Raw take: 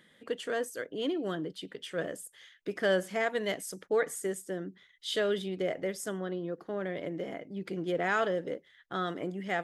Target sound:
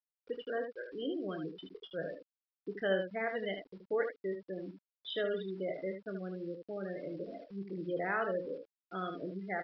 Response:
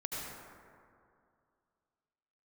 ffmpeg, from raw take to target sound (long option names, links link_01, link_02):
-af "afftfilt=real='re*gte(hypot(re,im),0.0355)':imag='im*gte(hypot(re,im),0.0355)':win_size=1024:overlap=0.75,aresample=11025,aeval=exprs='val(0)*gte(abs(val(0)),0.00224)':channel_layout=same,aresample=44100,aecho=1:1:26|76:0.299|0.447,volume=-5.5dB"